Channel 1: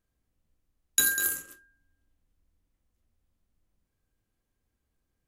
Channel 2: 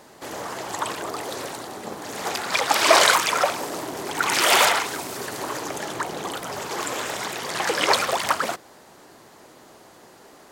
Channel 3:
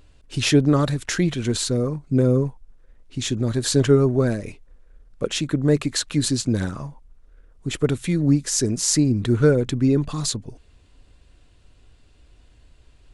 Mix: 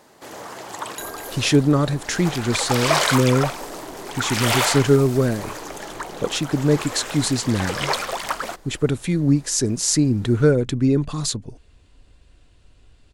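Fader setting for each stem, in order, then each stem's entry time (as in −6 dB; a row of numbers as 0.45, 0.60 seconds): −12.0, −3.5, +0.5 decibels; 0.00, 0.00, 1.00 seconds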